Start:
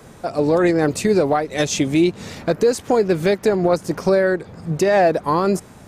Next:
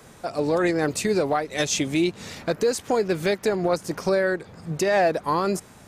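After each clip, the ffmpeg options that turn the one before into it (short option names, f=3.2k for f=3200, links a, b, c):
-af "tiltshelf=f=970:g=-3,volume=-4dB"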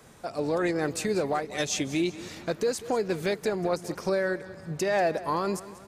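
-af "aecho=1:1:190|380|570|760:0.15|0.0748|0.0374|0.0187,volume=-5dB"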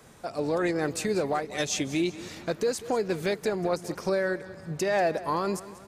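-af anull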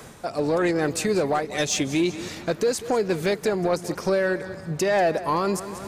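-af "areverse,acompressor=mode=upward:threshold=-33dB:ratio=2.5,areverse,asoftclip=type=tanh:threshold=-18dB,volume=5.5dB"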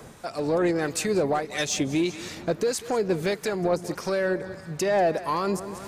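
-filter_complex "[0:a]acrossover=split=980[a][b];[a]aeval=exprs='val(0)*(1-0.5/2+0.5/2*cos(2*PI*1.6*n/s))':c=same[c];[b]aeval=exprs='val(0)*(1-0.5/2-0.5/2*cos(2*PI*1.6*n/s))':c=same[d];[c][d]amix=inputs=2:normalize=0"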